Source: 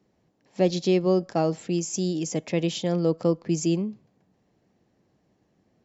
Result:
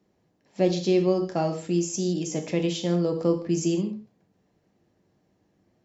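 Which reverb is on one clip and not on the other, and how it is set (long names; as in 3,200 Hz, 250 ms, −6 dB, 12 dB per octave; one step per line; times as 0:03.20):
reverb whose tail is shaped and stops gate 190 ms falling, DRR 4 dB
level −2 dB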